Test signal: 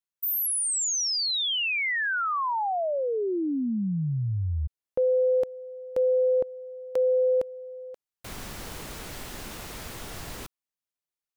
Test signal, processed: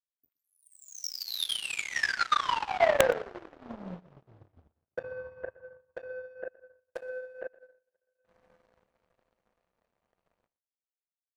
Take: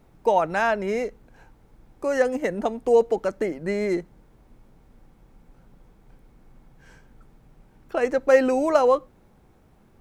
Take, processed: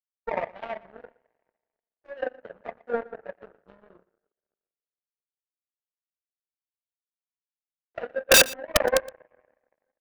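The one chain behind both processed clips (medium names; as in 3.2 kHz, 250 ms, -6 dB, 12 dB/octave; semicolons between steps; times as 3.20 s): local Wiener filter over 25 samples; low-pass that closes with the level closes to 810 Hz, closed at -20 dBFS; resonant low shelf 400 Hz -9 dB, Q 1.5; two-slope reverb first 0.25 s, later 4.8 s, from -22 dB, DRR -8.5 dB; in parallel at -4 dB: saturation -13.5 dBFS; on the sum: power-law waveshaper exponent 3; integer overflow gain 7.5 dB; on a send: delay 118 ms -21.5 dB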